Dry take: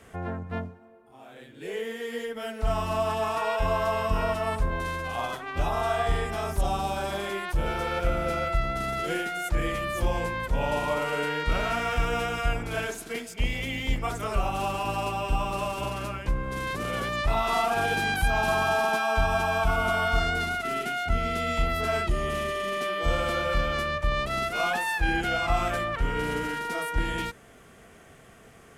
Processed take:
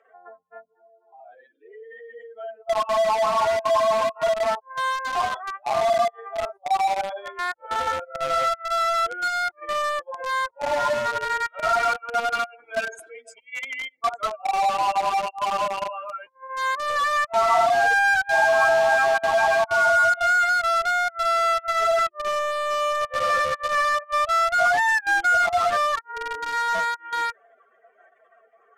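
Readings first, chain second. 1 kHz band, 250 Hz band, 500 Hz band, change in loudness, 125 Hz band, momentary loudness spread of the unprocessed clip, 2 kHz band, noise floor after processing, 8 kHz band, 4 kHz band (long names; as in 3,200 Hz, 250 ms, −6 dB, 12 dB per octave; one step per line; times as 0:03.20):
+7.5 dB, −12.5 dB, +5.0 dB, +6.0 dB, below −15 dB, 7 LU, +7.0 dB, −62 dBFS, +4.0 dB, +2.0 dB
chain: expanding power law on the bin magnitudes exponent 2.8
high-pass filter 670 Hz 24 dB per octave
in parallel at −4 dB: bit reduction 5 bits
on the sum: high-frequency loss of the air 54 metres
level +5 dB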